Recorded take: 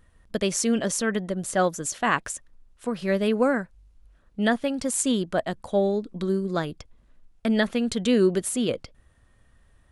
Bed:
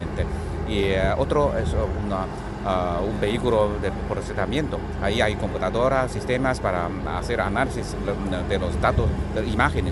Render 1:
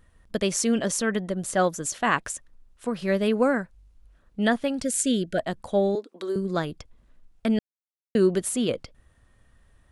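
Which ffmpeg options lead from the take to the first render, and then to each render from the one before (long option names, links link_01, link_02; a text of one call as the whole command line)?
ffmpeg -i in.wav -filter_complex "[0:a]asplit=3[link_01][link_02][link_03];[link_01]afade=type=out:start_time=4.82:duration=0.02[link_04];[link_02]asuperstop=centerf=990:order=20:qfactor=1.5,afade=type=in:start_time=4.82:duration=0.02,afade=type=out:start_time=5.38:duration=0.02[link_05];[link_03]afade=type=in:start_time=5.38:duration=0.02[link_06];[link_04][link_05][link_06]amix=inputs=3:normalize=0,asettb=1/sr,asplit=3[link_07][link_08][link_09];[link_07]atrim=end=5.954[link_10];[link_08]atrim=start=5.95:end=6.36,asetpts=PTS-STARTPTS,afade=type=in:duration=0.004:curve=qsin,afade=type=out:start_time=0.406:duration=0.004:curve=qsin,highpass=frequency=340:width=0.5412,highpass=frequency=340:width=1.3066[link_11];[link_09]atrim=start=6.356[link_12];[link_10][link_11]acrossfade=duration=0.004:curve1=hsin:curve2=qsin[link_13];[link_13][link_12]acrossfade=duration=0.004:curve1=qsin:curve2=hsin,asplit=3[link_14][link_15][link_16];[link_14]atrim=end=7.59,asetpts=PTS-STARTPTS,afade=type=out:start_time=7.586:duration=0.004:curve=hsin[link_17];[link_15]atrim=start=7.59:end=8.15,asetpts=PTS-STARTPTS,volume=0[link_18];[link_16]atrim=start=8.15,asetpts=PTS-STARTPTS,afade=type=in:duration=0.004:curve=hsin[link_19];[link_17][link_18][link_19]concat=n=3:v=0:a=1" out.wav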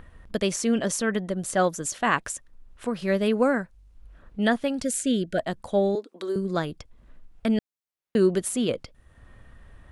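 ffmpeg -i in.wav -filter_complex "[0:a]acrossover=split=3300[link_01][link_02];[link_01]acompressor=mode=upward:threshold=-37dB:ratio=2.5[link_03];[link_02]alimiter=limit=-17.5dB:level=0:latency=1:release=408[link_04];[link_03][link_04]amix=inputs=2:normalize=0" out.wav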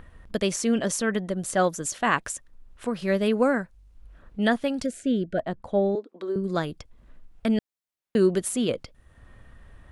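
ffmpeg -i in.wav -filter_complex "[0:a]asettb=1/sr,asplit=3[link_01][link_02][link_03];[link_01]atrim=end=4.864[link_04];[link_02]atrim=start=4.86:end=6.44,asetpts=PTS-STARTPTS,afade=type=in:duration=0.004:curve=qsin,afade=type=out:start_time=1.576:duration=0.004:curve=qsin,lowpass=frequency=1400:poles=1[link_05];[link_03]atrim=start=6.436[link_06];[link_04][link_05]acrossfade=duration=0.004:curve1=hsin:curve2=qsin[link_07];[link_07][link_06]acrossfade=duration=0.004:curve1=qsin:curve2=hsin" out.wav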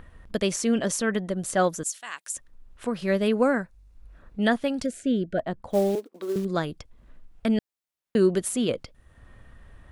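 ffmpeg -i in.wav -filter_complex "[0:a]asettb=1/sr,asplit=3[link_01][link_02][link_03];[link_01]atrim=end=1.834[link_04];[link_02]atrim=start=1.83:end=2.35,asetpts=PTS-STARTPTS,afade=type=in:duration=0.004:curve=qsin,afade=type=out:start_time=0.516:duration=0.004:curve=qsin,aderivative[link_05];[link_03]atrim=start=2.346[link_06];[link_04][link_05]acrossfade=duration=0.004:curve1=hsin:curve2=qsin[link_07];[link_07][link_06]acrossfade=duration=0.004:curve1=qsin:curve2=hsin,asettb=1/sr,asplit=3[link_08][link_09][link_10];[link_08]atrim=end=3.594[link_11];[link_09]atrim=start=3.59:end=4.41,asetpts=PTS-STARTPTS,afade=type=in:duration=0.004:curve=qsin,afade=type=out:start_time=0.816:duration=0.004:curve=qsin,bandreject=frequency=3100:width=12[link_12];[link_10]atrim=start=4.406[link_13];[link_11][link_12]acrossfade=duration=0.004:curve1=hsin:curve2=qsin[link_14];[link_14][link_13]acrossfade=duration=0.004:curve1=qsin:curve2=hsin,asettb=1/sr,asplit=3[link_15][link_16][link_17];[link_15]atrim=end=5.704[link_18];[link_16]atrim=start=5.7:end=6.45,asetpts=PTS-STARTPTS,afade=type=in:duration=0.004:curve=qsin,afade=type=out:start_time=0.746:duration=0.004:curve=qsin,acrusher=bits=5:mode=log:mix=0:aa=0.000001[link_19];[link_17]atrim=start=6.446[link_20];[link_18][link_19]acrossfade=duration=0.004:curve1=hsin:curve2=qsin[link_21];[link_21][link_20]acrossfade=duration=0.004:curve1=qsin:curve2=hsin" out.wav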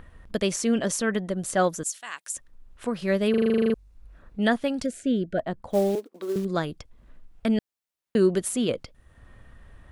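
ffmpeg -i in.wav -filter_complex "[0:a]asplit=12[link_01][link_02][link_03][link_04][link_05][link_06][link_07][link_08][link_09][link_10][link_11][link_12];[link_01]atrim=end=3.342[link_13];[link_02]atrim=start=3.298:end=3.342[link_14];[link_03]atrim=start=3.298:end=3.342[link_15];[link_04]atrim=start=3.298:end=3.342[link_16];[link_05]atrim=start=3.298:end=3.342[link_17];[link_06]atrim=start=3.298:end=3.342[link_18];[link_07]atrim=start=3.298:end=3.342[link_19];[link_08]atrim=start=3.298:end=3.342[link_20];[link_09]atrim=start=3.298:end=3.342[link_21];[link_10]atrim=start=3.298:end=3.342[link_22];[link_11]atrim=start=3.298:end=3.342[link_23];[link_12]atrim=start=3.738[link_24];[link_13][link_14]acrossfade=duration=0.004:curve1=hsin:curve2=hsin[link_25];[link_25][link_15]acrossfade=duration=0.004:curve1=hsin:curve2=hsin[link_26];[link_26][link_16]acrossfade=duration=0.004:curve1=hsin:curve2=hsin[link_27];[link_27][link_17]acrossfade=duration=0.004:curve1=hsin:curve2=hsin[link_28];[link_28][link_18]acrossfade=duration=0.004:curve1=hsin:curve2=hsin[link_29];[link_29][link_19]acrossfade=duration=0.004:curve1=hsin:curve2=hsin[link_30];[link_30][link_20]acrossfade=duration=0.004:curve1=hsin:curve2=hsin[link_31];[link_31][link_21]acrossfade=duration=0.004:curve1=hsin:curve2=hsin[link_32];[link_32][link_22]acrossfade=duration=0.004:curve1=hsin:curve2=hsin[link_33];[link_33][link_23]acrossfade=duration=0.004:curve1=hsin:curve2=hsin[link_34];[link_34][link_24]acrossfade=duration=0.004:curve1=hsin:curve2=hsin" out.wav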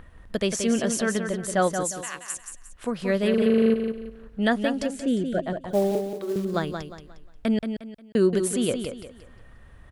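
ffmpeg -i in.wav -af "aecho=1:1:178|356|534|712:0.447|0.147|0.0486|0.0161" out.wav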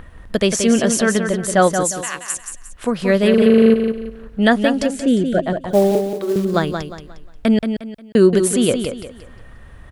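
ffmpeg -i in.wav -af "volume=8.5dB" out.wav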